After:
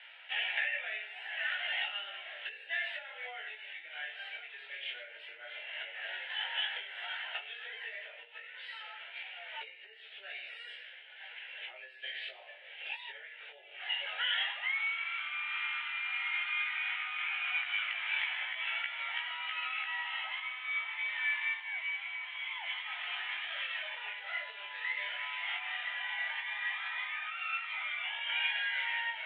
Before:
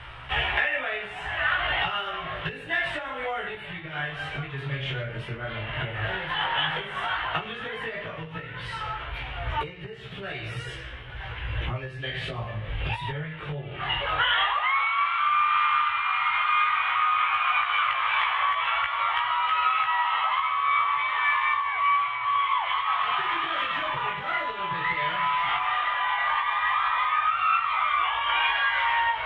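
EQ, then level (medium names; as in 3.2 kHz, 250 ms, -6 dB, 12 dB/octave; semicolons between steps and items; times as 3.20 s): Bessel high-pass 980 Hz, order 6; distance through air 110 m; static phaser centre 2.7 kHz, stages 4; -3.5 dB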